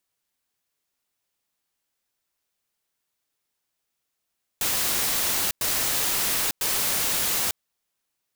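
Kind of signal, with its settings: noise bursts white, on 0.90 s, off 0.10 s, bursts 3, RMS -24.5 dBFS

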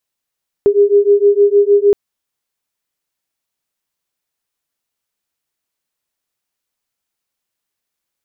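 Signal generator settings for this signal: beating tones 403 Hz, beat 6.5 Hz, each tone -10.5 dBFS 1.27 s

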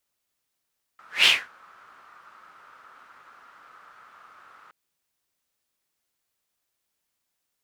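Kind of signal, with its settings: whoosh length 3.72 s, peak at 0.27 s, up 0.19 s, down 0.26 s, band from 1.3 kHz, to 3 kHz, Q 5.5, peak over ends 36.5 dB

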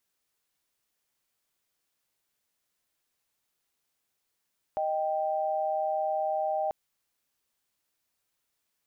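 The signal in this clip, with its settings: chord D#5/G5 sine, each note -29 dBFS 1.94 s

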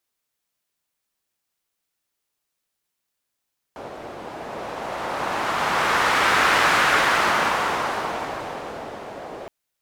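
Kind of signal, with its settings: wind-like swept noise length 5.72 s, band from 590 Hz, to 1.4 kHz, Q 1.3, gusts 1, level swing 18.5 dB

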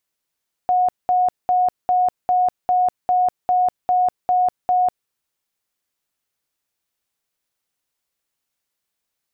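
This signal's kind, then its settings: tone bursts 728 Hz, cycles 143, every 0.40 s, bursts 11, -13.5 dBFS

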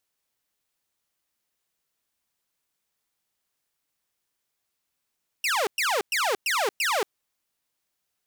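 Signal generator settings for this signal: burst of laser zaps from 2.9 kHz, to 370 Hz, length 0.23 s saw, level -19.5 dB, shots 5, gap 0.11 s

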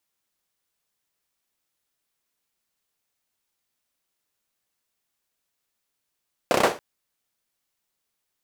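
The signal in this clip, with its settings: hand clap length 0.28 s, bursts 5, apart 31 ms, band 520 Hz, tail 0.30 s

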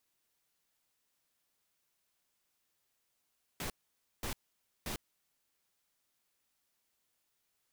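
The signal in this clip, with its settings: noise bursts pink, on 0.10 s, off 0.53 s, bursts 3, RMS -38.5 dBFS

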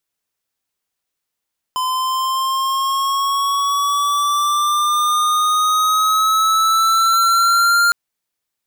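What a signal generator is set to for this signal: gliding synth tone square, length 6.16 s, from 1.02 kHz, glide +5.5 st, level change +6.5 dB, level -13 dB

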